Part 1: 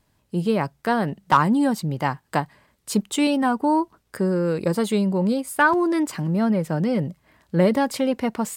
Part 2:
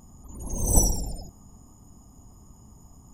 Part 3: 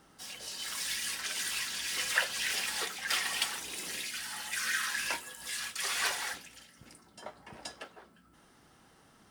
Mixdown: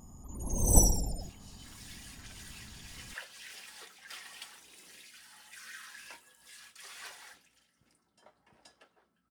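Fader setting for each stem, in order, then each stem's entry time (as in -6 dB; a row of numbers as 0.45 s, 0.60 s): mute, -2.0 dB, -15.5 dB; mute, 0.00 s, 1.00 s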